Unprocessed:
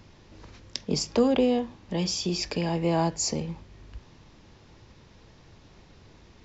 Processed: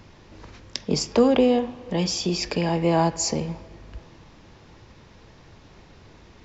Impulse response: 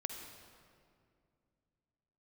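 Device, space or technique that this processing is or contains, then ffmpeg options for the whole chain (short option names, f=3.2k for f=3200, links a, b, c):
filtered reverb send: -filter_complex "[0:a]asplit=2[a][b];[b]highpass=f=540:p=1,lowpass=3k[c];[1:a]atrim=start_sample=2205[d];[c][d]afir=irnorm=-1:irlink=0,volume=-7dB[e];[a][e]amix=inputs=2:normalize=0,volume=3dB"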